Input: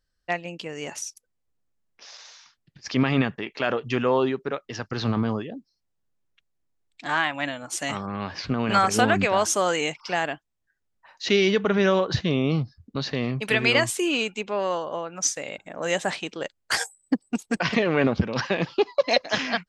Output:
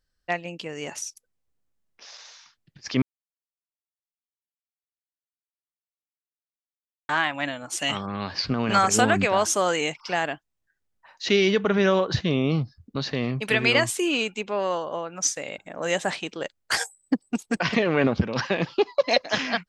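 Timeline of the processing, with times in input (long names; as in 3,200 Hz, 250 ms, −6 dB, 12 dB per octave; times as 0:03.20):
0:03.02–0:07.09: silence
0:07.78–0:09.32: parametric band 2,700 Hz → 10,000 Hz +10.5 dB 0.32 octaves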